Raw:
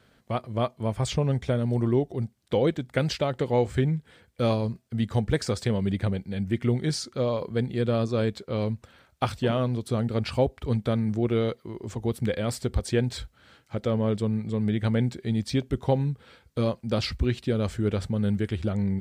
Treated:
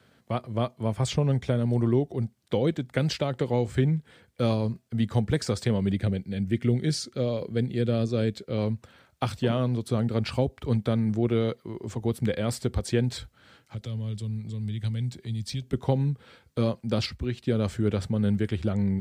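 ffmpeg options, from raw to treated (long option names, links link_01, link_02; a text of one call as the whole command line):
ffmpeg -i in.wav -filter_complex "[0:a]asettb=1/sr,asplit=3[link_01][link_02][link_03];[link_01]atrim=end=5.944[link_04];[link_02]atrim=start=5.94:end=8.58,asetpts=PTS-STARTPTS,afade=type=in:duration=0.004:curve=qsin,afade=type=out:start_time=2.636:duration=0.004:curve=qsin,equalizer=frequency=1000:width=1.9:gain=-10[link_05];[link_03]atrim=start=8.576[link_06];[link_04][link_05]acrossfade=duration=0.004:curve1=hsin:curve2=qsin[link_07];[link_07][link_06]acrossfade=duration=0.004:curve1=qsin:curve2=hsin,asettb=1/sr,asplit=3[link_08][link_09][link_10];[link_08]atrim=end=13.184[link_11];[link_09]atrim=start=13.18:end=15.73,asetpts=PTS-STARTPTS,afade=type=in:duration=0.004:curve=qsin,afade=type=out:start_time=2.546:duration=0.004:curve=qsin,acrossover=split=140|3000[link_12][link_13][link_14];[link_13]acompressor=threshold=-44dB:ratio=6:attack=3.2:release=140:knee=2.83:detection=peak[link_15];[link_12][link_15][link_14]amix=inputs=3:normalize=0[link_16];[link_10]atrim=start=15.726[link_17];[link_11][link_16]acrossfade=duration=0.004:curve1=hsin:curve2=qsin[link_18];[link_18][link_17]acrossfade=duration=0.004:curve1=qsin:curve2=hsin,asplit=3[link_19][link_20][link_21];[link_19]atrim=end=17.062[link_22];[link_20]atrim=start=17.058:end=17.472,asetpts=PTS-STARTPTS,volume=-5dB[link_23];[link_21]atrim=start=17.468[link_24];[link_22][link_23]acrossfade=duration=0.004:curve1=hsin:curve2=hsin[link_25];[link_25][link_24]acrossfade=duration=0.004:curve1=hsin:curve2=hsin,highpass=89,lowshelf=frequency=170:gain=3,acrossover=split=340|3000[link_26][link_27][link_28];[link_27]acompressor=threshold=-26dB:ratio=6[link_29];[link_26][link_29][link_28]amix=inputs=3:normalize=0" out.wav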